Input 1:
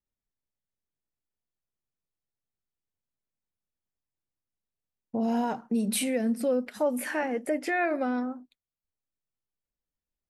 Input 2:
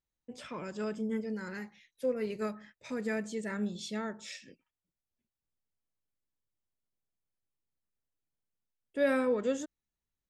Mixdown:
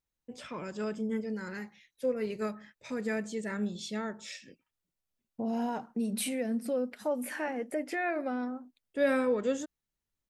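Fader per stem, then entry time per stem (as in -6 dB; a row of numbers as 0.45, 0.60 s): -5.0, +1.0 dB; 0.25, 0.00 s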